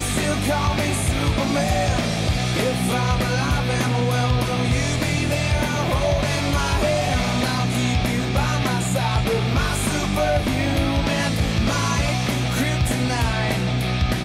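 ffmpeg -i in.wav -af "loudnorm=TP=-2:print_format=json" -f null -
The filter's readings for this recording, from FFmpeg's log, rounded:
"input_i" : "-21.2",
"input_tp" : "-9.8",
"input_lra" : "0.5",
"input_thresh" : "-31.2",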